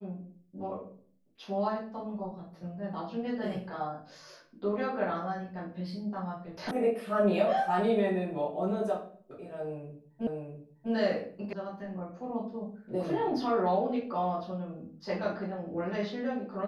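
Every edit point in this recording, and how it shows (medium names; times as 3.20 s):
6.71 s: sound stops dead
10.27 s: repeat of the last 0.65 s
11.53 s: sound stops dead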